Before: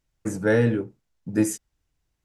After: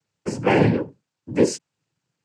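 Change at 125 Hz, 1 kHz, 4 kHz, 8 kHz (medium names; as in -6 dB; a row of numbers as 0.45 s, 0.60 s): +2.5 dB, +12.5 dB, +10.0 dB, -0.5 dB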